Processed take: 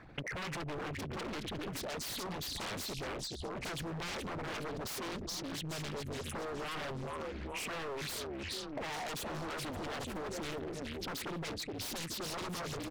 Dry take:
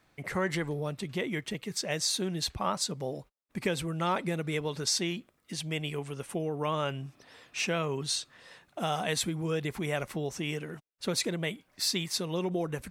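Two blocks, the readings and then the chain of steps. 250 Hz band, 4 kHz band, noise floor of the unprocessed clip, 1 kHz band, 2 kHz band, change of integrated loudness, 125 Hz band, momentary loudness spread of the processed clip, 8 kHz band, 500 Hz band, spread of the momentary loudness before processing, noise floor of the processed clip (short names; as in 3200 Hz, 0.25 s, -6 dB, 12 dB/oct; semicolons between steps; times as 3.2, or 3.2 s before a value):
-7.5 dB, -7.0 dB, -71 dBFS, -5.5 dB, -5.0 dB, -7.5 dB, -8.5 dB, 2 LU, -9.0 dB, -7.5 dB, 9 LU, -43 dBFS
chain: formant sharpening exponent 2; on a send: frequency-shifting echo 0.419 s, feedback 47%, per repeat -66 Hz, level -7.5 dB; on the sum: wavefolder -32.5 dBFS; compressor 12:1, threshold -51 dBFS, peak gain reduction 16 dB; Doppler distortion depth 0.92 ms; gain +13 dB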